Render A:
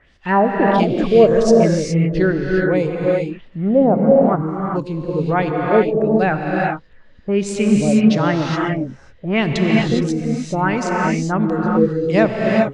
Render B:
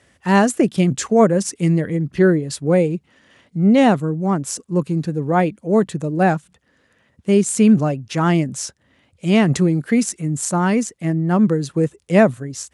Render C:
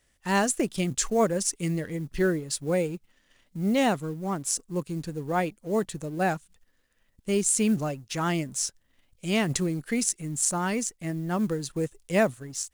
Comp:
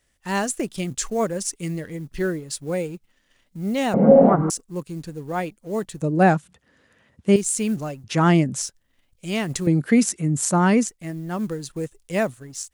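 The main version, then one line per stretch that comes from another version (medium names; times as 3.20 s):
C
3.94–4.50 s: from A
6.02–7.36 s: from B
8.04–8.62 s: from B
9.67–10.88 s: from B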